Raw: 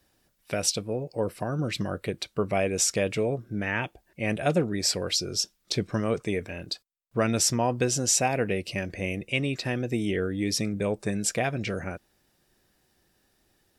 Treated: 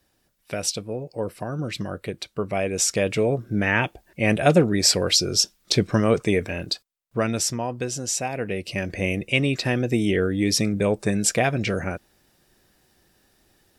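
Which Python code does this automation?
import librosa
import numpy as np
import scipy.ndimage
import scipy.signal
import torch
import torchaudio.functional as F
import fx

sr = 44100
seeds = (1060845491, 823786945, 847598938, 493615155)

y = fx.gain(x, sr, db=fx.line((2.5, 0.0), (3.57, 7.5), (6.6, 7.5), (7.67, -3.0), (8.32, -3.0), (8.97, 6.0)))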